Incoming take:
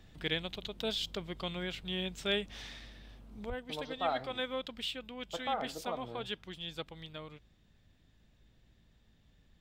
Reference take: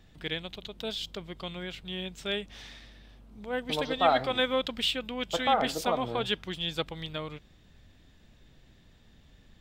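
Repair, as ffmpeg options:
ffmpeg -i in.wav -filter_complex "[0:a]bandreject=frequency=54.1:width_type=h:width=4,bandreject=frequency=108.2:width_type=h:width=4,bandreject=frequency=162.3:width_type=h:width=4,bandreject=frequency=216.4:width_type=h:width=4,asplit=3[link_01][link_02][link_03];[link_01]afade=type=out:start_time=3.48:duration=0.02[link_04];[link_02]highpass=frequency=140:width=0.5412,highpass=frequency=140:width=1.3066,afade=type=in:start_time=3.48:duration=0.02,afade=type=out:start_time=3.6:duration=0.02[link_05];[link_03]afade=type=in:start_time=3.6:duration=0.02[link_06];[link_04][link_05][link_06]amix=inputs=3:normalize=0,asetnsamples=nb_out_samples=441:pad=0,asendcmd='3.5 volume volume 9.5dB',volume=0dB" out.wav

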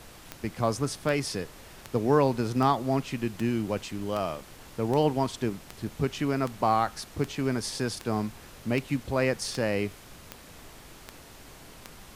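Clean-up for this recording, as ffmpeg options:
ffmpeg -i in.wav -af "adeclick=threshold=4,afftdn=noise_reduction=24:noise_floor=-49" out.wav

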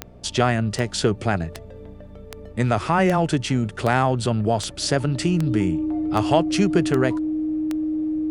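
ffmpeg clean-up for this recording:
ffmpeg -i in.wav -af "adeclick=threshold=4,bandreject=frequency=61.8:width_type=h:width=4,bandreject=frequency=123.6:width_type=h:width=4,bandreject=frequency=185.4:width_type=h:width=4,bandreject=frequency=247.2:width_type=h:width=4,bandreject=frequency=310:width=30" out.wav

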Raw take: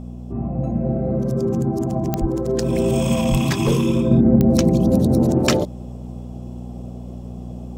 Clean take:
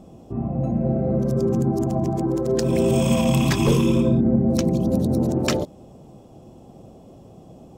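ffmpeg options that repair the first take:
ffmpeg -i in.wav -filter_complex "[0:a]adeclick=threshold=4,bandreject=frequency=60.5:width_type=h:width=4,bandreject=frequency=121:width_type=h:width=4,bandreject=frequency=181.5:width_type=h:width=4,bandreject=frequency=242:width_type=h:width=4,asplit=3[link_01][link_02][link_03];[link_01]afade=type=out:start_time=2.2:duration=0.02[link_04];[link_02]highpass=frequency=140:width=0.5412,highpass=frequency=140:width=1.3066,afade=type=in:start_time=2.2:duration=0.02,afade=type=out:start_time=2.32:duration=0.02[link_05];[link_03]afade=type=in:start_time=2.32:duration=0.02[link_06];[link_04][link_05][link_06]amix=inputs=3:normalize=0,asplit=3[link_07][link_08][link_09];[link_07]afade=type=out:start_time=3.3:duration=0.02[link_10];[link_08]highpass=frequency=140:width=0.5412,highpass=frequency=140:width=1.3066,afade=type=in:start_time=3.3:duration=0.02,afade=type=out:start_time=3.42:duration=0.02[link_11];[link_09]afade=type=in:start_time=3.42:duration=0.02[link_12];[link_10][link_11][link_12]amix=inputs=3:normalize=0,asetnsamples=nb_out_samples=441:pad=0,asendcmd='4.11 volume volume -4.5dB',volume=0dB" out.wav

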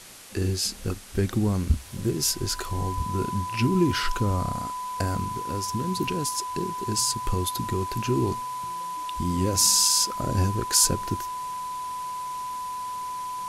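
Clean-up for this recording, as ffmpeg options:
ffmpeg -i in.wav -af "bandreject=frequency=1000:width=30,afwtdn=0.0063" out.wav

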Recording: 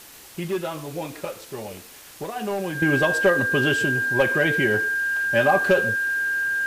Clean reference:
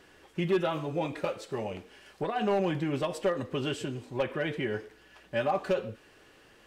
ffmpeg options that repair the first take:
ffmpeg -i in.wav -af "adeclick=threshold=4,bandreject=frequency=1600:width=30,afwtdn=0.0063,asetnsamples=nb_out_samples=441:pad=0,asendcmd='2.82 volume volume -9dB',volume=0dB" out.wav

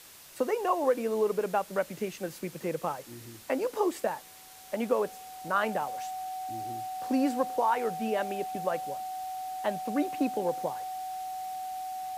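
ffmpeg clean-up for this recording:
ffmpeg -i in.wav -af "adeclick=threshold=4,bandreject=frequency=750:width=30,afftdn=noise_reduction=26:noise_floor=-49" out.wav

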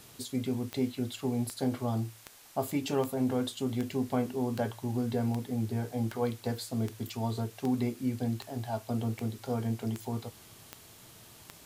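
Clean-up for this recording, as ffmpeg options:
ffmpeg -i in.wav -af "adeclick=threshold=4,afftdn=noise_reduction=24:noise_floor=-54" out.wav

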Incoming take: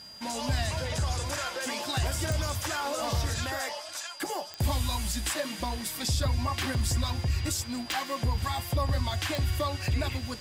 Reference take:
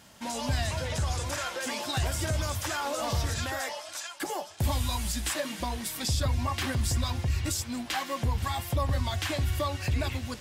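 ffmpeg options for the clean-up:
ffmpeg -i in.wav -af "adeclick=threshold=4,bandreject=frequency=4800:width=30" out.wav

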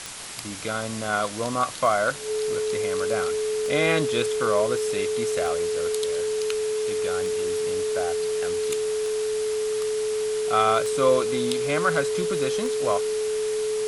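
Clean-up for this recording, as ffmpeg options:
ffmpeg -i in.wav -af "adeclick=threshold=4,bandreject=frequency=430:width=30,afwtdn=0.018" out.wav

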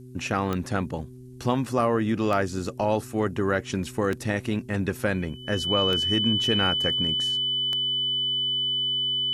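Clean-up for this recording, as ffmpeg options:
ffmpeg -i in.wav -af "adeclick=threshold=4,bandreject=frequency=126.3:width_type=h:width=4,bandreject=frequency=252.6:width_type=h:width=4,bandreject=frequency=378.9:width_type=h:width=4,bandreject=frequency=3000:width=30,agate=range=-21dB:threshold=-33dB" out.wav

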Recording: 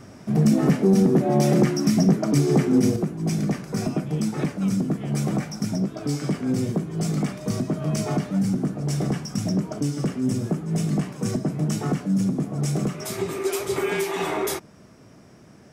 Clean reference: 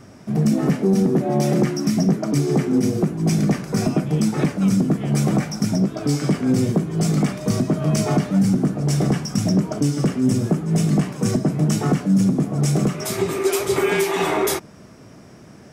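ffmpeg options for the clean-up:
ffmpeg -i in.wav -af "asetnsamples=nb_out_samples=441:pad=0,asendcmd='2.96 volume volume 5.5dB',volume=0dB" out.wav

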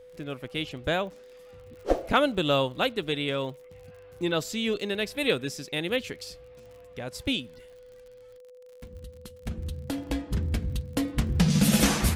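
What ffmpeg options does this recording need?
ffmpeg -i in.wav -af "adeclick=threshold=4,bandreject=frequency=500:width=30" out.wav

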